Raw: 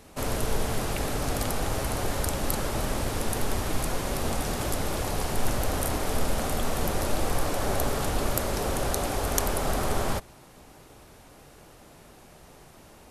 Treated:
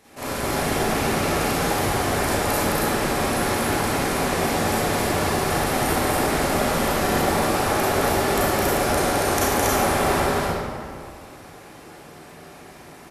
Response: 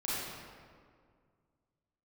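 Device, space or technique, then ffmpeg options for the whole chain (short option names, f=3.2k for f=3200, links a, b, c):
stadium PA: -filter_complex "[0:a]highpass=f=170:p=1,equalizer=f=1.9k:t=o:w=0.62:g=4.5,aecho=1:1:212.8|277:0.631|0.794[a];[1:a]atrim=start_sample=2205[b];[a][b]afir=irnorm=-1:irlink=0"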